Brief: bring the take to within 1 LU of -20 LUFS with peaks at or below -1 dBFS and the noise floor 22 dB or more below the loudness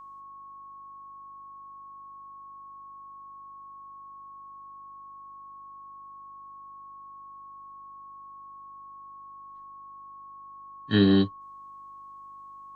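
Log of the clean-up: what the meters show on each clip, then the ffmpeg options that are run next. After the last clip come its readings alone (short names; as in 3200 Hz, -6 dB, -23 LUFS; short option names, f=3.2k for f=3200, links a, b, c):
hum 50 Hz; harmonics up to 350 Hz; hum level -70 dBFS; steady tone 1100 Hz; tone level -43 dBFS; loudness -23.0 LUFS; peak -10.0 dBFS; loudness target -20.0 LUFS
-> -af "bandreject=f=50:t=h:w=4,bandreject=f=100:t=h:w=4,bandreject=f=150:t=h:w=4,bandreject=f=200:t=h:w=4,bandreject=f=250:t=h:w=4,bandreject=f=300:t=h:w=4,bandreject=f=350:t=h:w=4"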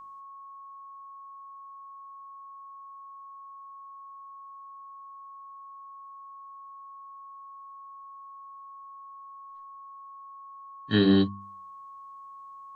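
hum none; steady tone 1100 Hz; tone level -43 dBFS
-> -af "bandreject=f=1.1k:w=30"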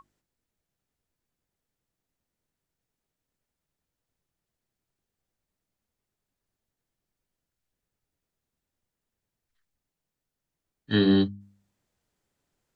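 steady tone none; loudness -24.0 LUFS; peak -10.5 dBFS; loudness target -20.0 LUFS
-> -af "volume=4dB"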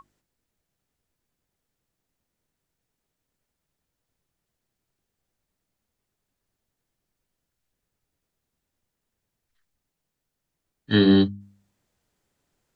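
loudness -20.0 LUFS; peak -6.5 dBFS; noise floor -83 dBFS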